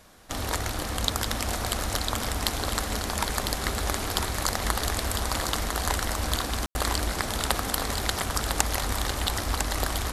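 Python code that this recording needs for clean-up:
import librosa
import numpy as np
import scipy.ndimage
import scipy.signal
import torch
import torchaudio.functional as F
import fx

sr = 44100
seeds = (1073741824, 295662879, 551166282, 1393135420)

y = fx.fix_ambience(x, sr, seeds[0], print_start_s=0.0, print_end_s=0.5, start_s=6.66, end_s=6.75)
y = fx.fix_echo_inverse(y, sr, delay_ms=1002, level_db=-6.0)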